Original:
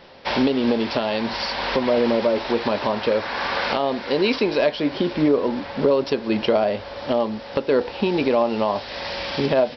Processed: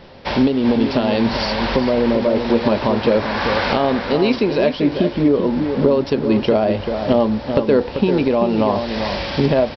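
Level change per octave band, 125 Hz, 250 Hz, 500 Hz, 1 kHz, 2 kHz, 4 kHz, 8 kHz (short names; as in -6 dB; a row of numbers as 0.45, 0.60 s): +9.5 dB, +6.5 dB, +3.5 dB, +3.0 dB, +2.0 dB, +1.5 dB, n/a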